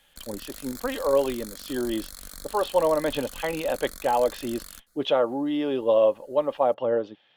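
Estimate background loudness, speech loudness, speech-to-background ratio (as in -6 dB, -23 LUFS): -41.0 LUFS, -26.0 LUFS, 15.0 dB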